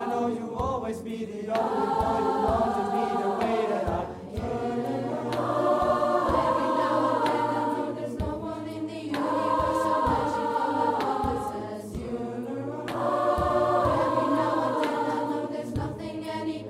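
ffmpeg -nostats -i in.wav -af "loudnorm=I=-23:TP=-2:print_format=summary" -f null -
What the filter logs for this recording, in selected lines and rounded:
Input Integrated:    -27.2 LUFS
Input True Peak:     -11.0 dBTP
Input LRA:             1.6 LU
Input Threshold:     -37.2 LUFS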